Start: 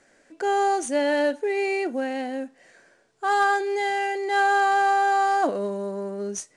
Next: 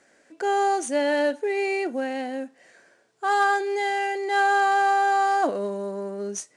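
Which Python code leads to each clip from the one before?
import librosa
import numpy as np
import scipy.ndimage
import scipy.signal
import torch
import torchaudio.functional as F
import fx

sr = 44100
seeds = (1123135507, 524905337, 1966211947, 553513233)

y = fx.highpass(x, sr, hz=140.0, slope=6)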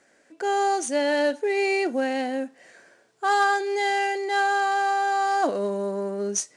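y = fx.dynamic_eq(x, sr, hz=5200.0, q=1.1, threshold_db=-46.0, ratio=4.0, max_db=5)
y = fx.rider(y, sr, range_db=3, speed_s=0.5)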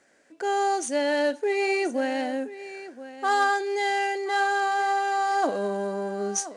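y = x + 10.0 ** (-14.5 / 20.0) * np.pad(x, (int(1026 * sr / 1000.0), 0))[:len(x)]
y = y * 10.0 ** (-1.5 / 20.0)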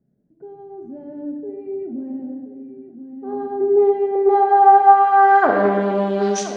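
y = fx.filter_sweep_lowpass(x, sr, from_hz=150.0, to_hz=3500.0, start_s=2.79, end_s=6.28, q=2.3)
y = fx.room_shoebox(y, sr, seeds[0], volume_m3=1100.0, walls='mixed', distance_m=1.4)
y = fx.doppler_dist(y, sr, depth_ms=0.15)
y = y * 10.0 ** (6.5 / 20.0)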